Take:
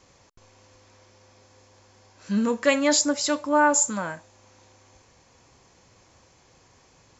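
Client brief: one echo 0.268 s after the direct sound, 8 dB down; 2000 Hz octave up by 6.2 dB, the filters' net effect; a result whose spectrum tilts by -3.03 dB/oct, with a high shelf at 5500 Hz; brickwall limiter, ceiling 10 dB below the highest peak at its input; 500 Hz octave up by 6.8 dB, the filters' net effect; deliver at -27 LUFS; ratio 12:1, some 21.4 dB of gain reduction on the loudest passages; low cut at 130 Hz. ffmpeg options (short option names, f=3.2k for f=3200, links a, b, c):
-af "highpass=130,equalizer=f=500:t=o:g=7.5,equalizer=f=2k:t=o:g=8.5,highshelf=f=5.5k:g=-3.5,acompressor=threshold=-30dB:ratio=12,alimiter=level_in=6.5dB:limit=-24dB:level=0:latency=1,volume=-6.5dB,aecho=1:1:268:0.398,volume=15.5dB"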